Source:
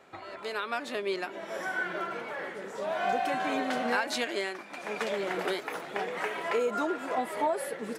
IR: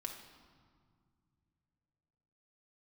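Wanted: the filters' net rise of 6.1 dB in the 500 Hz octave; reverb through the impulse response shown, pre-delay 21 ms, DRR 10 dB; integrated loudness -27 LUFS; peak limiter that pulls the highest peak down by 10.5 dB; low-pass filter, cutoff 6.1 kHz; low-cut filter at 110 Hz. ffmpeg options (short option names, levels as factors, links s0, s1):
-filter_complex "[0:a]highpass=110,lowpass=6100,equalizer=f=500:t=o:g=7.5,alimiter=limit=0.0631:level=0:latency=1,asplit=2[s0][s1];[1:a]atrim=start_sample=2205,adelay=21[s2];[s1][s2]afir=irnorm=-1:irlink=0,volume=0.398[s3];[s0][s3]amix=inputs=2:normalize=0,volume=1.88"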